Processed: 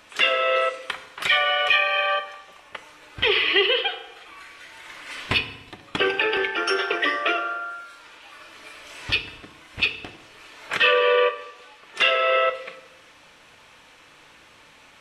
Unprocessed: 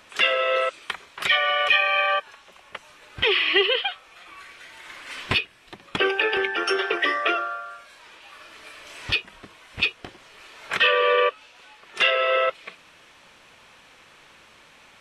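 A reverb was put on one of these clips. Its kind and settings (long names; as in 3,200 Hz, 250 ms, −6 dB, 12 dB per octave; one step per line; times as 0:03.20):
feedback delay network reverb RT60 1 s, low-frequency decay 1.2×, high-frequency decay 0.75×, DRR 7.5 dB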